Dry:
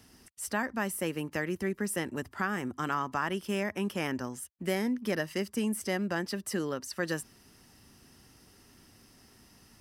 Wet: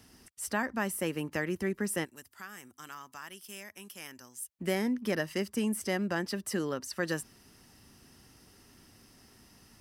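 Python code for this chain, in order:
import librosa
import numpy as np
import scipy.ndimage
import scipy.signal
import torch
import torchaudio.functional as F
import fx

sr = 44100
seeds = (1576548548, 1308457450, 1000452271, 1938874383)

y = fx.pre_emphasis(x, sr, coefficient=0.9, at=(2.04, 4.48), fade=0.02)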